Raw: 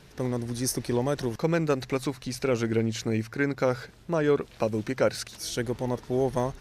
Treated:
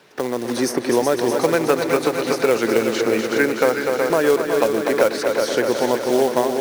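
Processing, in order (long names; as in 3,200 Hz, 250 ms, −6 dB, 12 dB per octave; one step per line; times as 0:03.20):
high-pass filter 360 Hz 12 dB per octave
noise gate −46 dBFS, range −14 dB
high-shelf EQ 4,200 Hz −9 dB
automatic gain control gain up to 13 dB
floating-point word with a short mantissa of 2 bits
echo machine with several playback heads 123 ms, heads second and third, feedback 65%, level −8 dB
multiband upward and downward compressor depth 70%
level −1 dB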